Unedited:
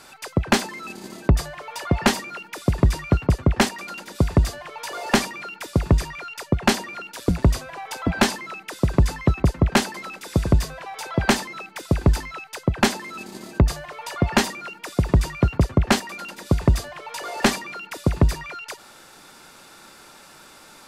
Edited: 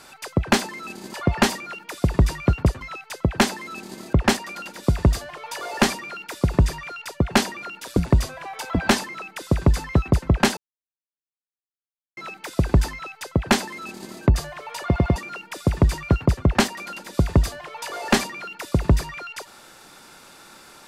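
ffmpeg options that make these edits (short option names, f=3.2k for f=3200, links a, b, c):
-filter_complex "[0:a]asplit=9[a][b][c][d][e][f][g][h][i];[a]atrim=end=1.142[j];[b]atrim=start=1.778:end=3.452[k];[c]atrim=start=12.238:end=13.562[l];[d]atrim=start=3.448:end=9.89,asetpts=PTS-STARTPTS,afade=t=out:st=6.438:d=0.004:c=hsin[m];[e]atrim=start=9.89:end=11.49,asetpts=PTS-STARTPTS,volume=0[n];[f]atrim=start=11.49:end=14.282,asetpts=PTS-STARTPTS,afade=t=in:d=0.004:c=hsin[o];[g]atrim=start=14.178:end=14.282[p];[h]atrim=start=14.178:end=14.282[q];[i]atrim=start=14.478[r];[j][k]acrossfade=d=0.004:c1=hsin:c2=hsin[s];[s][l]acrossfade=d=0.004:c1=hsin:c2=hsin[t];[m][n][o]concat=n=3:v=0:a=1[u];[t][u]acrossfade=d=0.004:c1=hsin:c2=hsin[v];[v][p]acrossfade=d=0.004:c1=hsin:c2=hsin[w];[w][q]acrossfade=d=0.004:c1=hsin:c2=hsin[x];[x][r]acrossfade=d=0.004:c1=hsin:c2=hsin"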